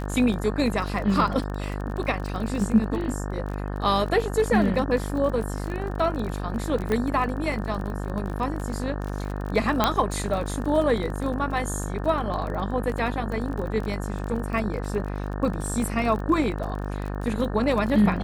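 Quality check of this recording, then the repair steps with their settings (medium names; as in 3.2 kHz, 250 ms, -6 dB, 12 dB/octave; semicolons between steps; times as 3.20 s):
buzz 50 Hz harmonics 36 -30 dBFS
crackle 26 per s -30 dBFS
6.92 s: pop -14 dBFS
9.84 s: pop -5 dBFS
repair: de-click; de-hum 50 Hz, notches 36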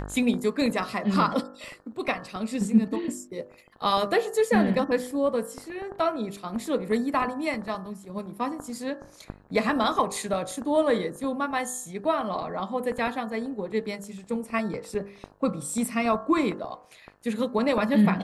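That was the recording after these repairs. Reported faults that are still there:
nothing left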